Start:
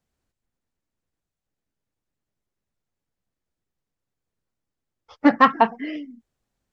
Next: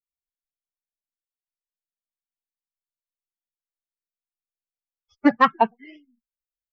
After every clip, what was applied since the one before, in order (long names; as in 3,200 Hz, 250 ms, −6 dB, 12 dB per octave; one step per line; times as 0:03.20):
spectral dynamics exaggerated over time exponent 2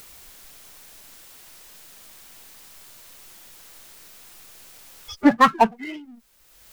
upward compression, threshold −37 dBFS
power curve on the samples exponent 0.7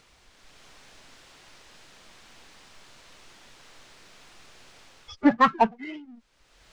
automatic gain control gain up to 7.5 dB
high-frequency loss of the air 110 metres
level −6 dB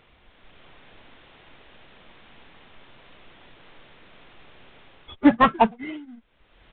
in parallel at −9 dB: sample-rate reduction 1,800 Hz, jitter 20%
on the sum: downsampling to 8,000 Hz
level +1.5 dB